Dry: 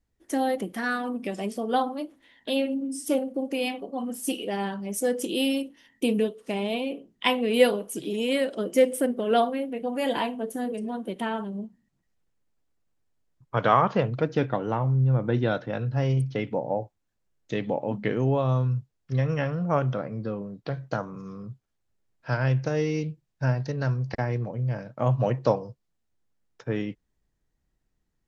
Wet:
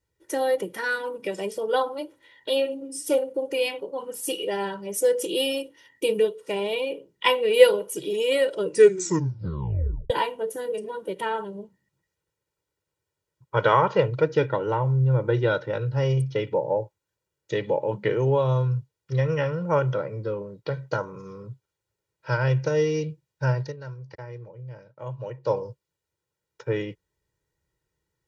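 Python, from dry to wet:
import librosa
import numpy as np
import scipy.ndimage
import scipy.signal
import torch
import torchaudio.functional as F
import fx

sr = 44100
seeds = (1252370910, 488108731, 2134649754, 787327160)

y = fx.edit(x, sr, fx.tape_stop(start_s=8.56, length_s=1.54),
    fx.fade_down_up(start_s=23.6, length_s=2.0, db=-13.0, fade_s=0.16), tone=tone)
y = scipy.signal.sosfilt(scipy.signal.butter(2, 94.0, 'highpass', fs=sr, output='sos'), y)
y = y + 0.92 * np.pad(y, (int(2.1 * sr / 1000.0), 0))[:len(y)]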